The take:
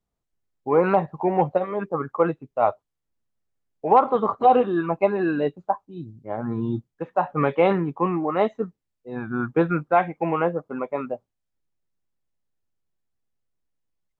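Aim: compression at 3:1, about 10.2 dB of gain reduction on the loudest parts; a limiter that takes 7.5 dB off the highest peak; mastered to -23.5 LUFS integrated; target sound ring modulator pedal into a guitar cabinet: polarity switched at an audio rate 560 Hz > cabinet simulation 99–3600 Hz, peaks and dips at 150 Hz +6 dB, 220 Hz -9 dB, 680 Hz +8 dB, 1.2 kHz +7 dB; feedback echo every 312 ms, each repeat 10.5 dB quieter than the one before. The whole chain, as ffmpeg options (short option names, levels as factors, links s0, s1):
-af "acompressor=threshold=0.0562:ratio=3,alimiter=limit=0.1:level=0:latency=1,aecho=1:1:312|624|936:0.299|0.0896|0.0269,aeval=exprs='val(0)*sgn(sin(2*PI*560*n/s))':c=same,highpass=99,equalizer=f=150:t=q:w=4:g=6,equalizer=f=220:t=q:w=4:g=-9,equalizer=f=680:t=q:w=4:g=8,equalizer=f=1200:t=q:w=4:g=7,lowpass=f=3600:w=0.5412,lowpass=f=3600:w=1.3066,volume=1.88"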